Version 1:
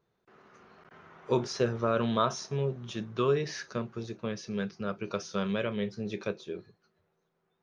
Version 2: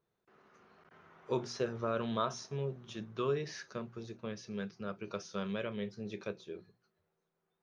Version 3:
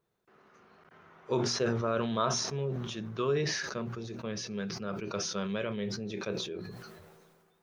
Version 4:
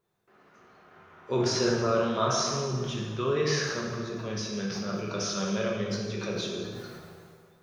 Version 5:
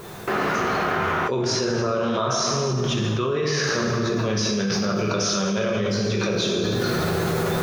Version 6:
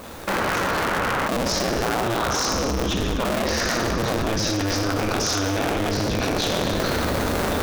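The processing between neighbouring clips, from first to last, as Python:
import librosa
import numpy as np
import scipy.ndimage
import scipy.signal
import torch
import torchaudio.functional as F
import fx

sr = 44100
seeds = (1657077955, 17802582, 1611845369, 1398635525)

y1 = fx.hum_notches(x, sr, base_hz=60, count=4)
y1 = y1 * librosa.db_to_amplitude(-6.5)
y2 = fx.sustainer(y1, sr, db_per_s=32.0)
y2 = y2 * librosa.db_to_amplitude(3.0)
y3 = fx.rev_plate(y2, sr, seeds[0], rt60_s=1.6, hf_ratio=0.8, predelay_ms=0, drr_db=-2.0)
y4 = fx.env_flatten(y3, sr, amount_pct=100)
y5 = fx.cycle_switch(y4, sr, every=2, mode='inverted')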